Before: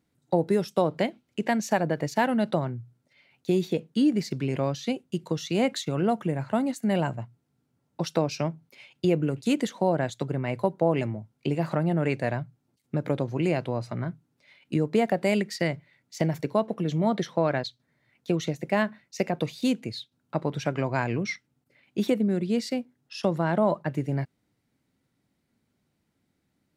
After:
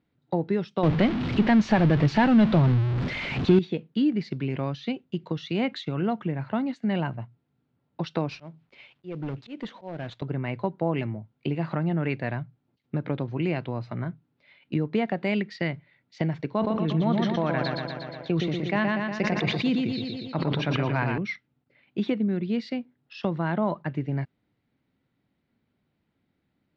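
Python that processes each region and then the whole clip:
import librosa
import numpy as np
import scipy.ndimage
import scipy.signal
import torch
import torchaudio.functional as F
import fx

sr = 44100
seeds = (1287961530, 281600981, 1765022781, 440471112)

y = fx.chain(x, sr, fx.zero_step(step_db=-26.0),
    fx.low_shelf(hz=390.0, db=8.5), at=(0.83, 3.59))
y = fx.chain(y, sr, fx.cvsd(bps=64000),
    fx.auto_swell(attack_ms=315.0),
    fx.clip_hard(threshold_db=-27.0), at=(8.28, 10.22))
y = fx.chain(y, sr, fx.echo_feedback(ms=119, feedback_pct=56, wet_db=-4.5),
    fx.sustainer(db_per_s=27.0), at=(16.52, 21.18))
y = scipy.signal.sosfilt(scipy.signal.butter(4, 3900.0, 'lowpass', fs=sr, output='sos'), y)
y = fx.dynamic_eq(y, sr, hz=560.0, q=1.5, threshold_db=-37.0, ratio=4.0, max_db=-6)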